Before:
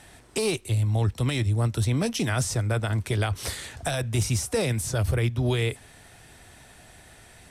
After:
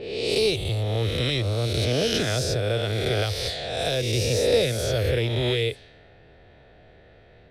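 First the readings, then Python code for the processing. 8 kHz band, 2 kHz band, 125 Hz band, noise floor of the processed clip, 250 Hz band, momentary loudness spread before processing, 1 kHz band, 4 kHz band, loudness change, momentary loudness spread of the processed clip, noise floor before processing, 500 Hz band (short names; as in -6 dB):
-2.0 dB, +2.5 dB, -1.5 dB, -52 dBFS, -0.5 dB, 5 LU, 0.0 dB, +8.5 dB, +2.0 dB, 4 LU, -52 dBFS, +7.0 dB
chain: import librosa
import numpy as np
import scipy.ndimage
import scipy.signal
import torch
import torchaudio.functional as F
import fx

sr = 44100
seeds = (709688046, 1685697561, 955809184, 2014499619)

y = fx.spec_swells(x, sr, rise_s=1.62)
y = fx.env_lowpass(y, sr, base_hz=1300.0, full_db=-21.0)
y = fx.graphic_eq_10(y, sr, hz=(250, 500, 1000, 4000, 8000), db=(-4, 10, -10, 11, -9))
y = y * 10.0 ** (-3.0 / 20.0)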